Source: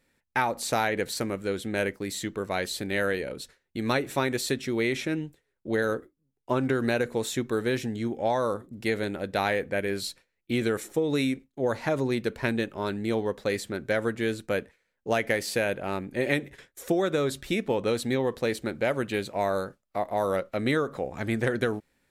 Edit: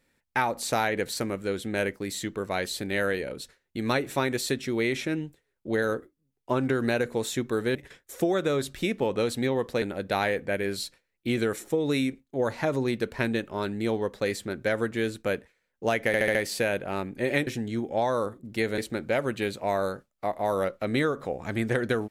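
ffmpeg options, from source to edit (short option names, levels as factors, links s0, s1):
-filter_complex "[0:a]asplit=9[s0][s1][s2][s3][s4][s5][s6][s7][s8];[s0]atrim=end=7.752[s9];[s1]atrim=start=16.428:end=18.502[s10];[s2]atrim=start=9.058:end=15.382[s11];[s3]atrim=start=15.308:end=15.382[s12];[s4]atrim=start=15.308:end=15.382[s13];[s5]atrim=start=15.308:end=15.382[s14];[s6]atrim=start=15.308:end=16.432[s15];[s7]atrim=start=7.748:end=9.062[s16];[s8]atrim=start=18.498[s17];[s9][s10]acrossfade=d=0.004:c1=hsin:c2=hsin[s18];[s18][s11]acrossfade=d=0.004:c1=hsin:c2=hsin[s19];[s19][s12]acrossfade=d=0.004:c1=hsin:c2=hsin[s20];[s20][s13]acrossfade=d=0.004:c1=hsin:c2=hsin[s21];[s21][s14]acrossfade=d=0.004:c1=hsin:c2=hsin[s22];[s22][s15]acrossfade=d=0.004:c1=hsin:c2=hsin[s23];[s23][s16]acrossfade=d=0.004:c1=hsin:c2=hsin[s24];[s24][s17]acrossfade=d=0.004:c1=hsin:c2=hsin"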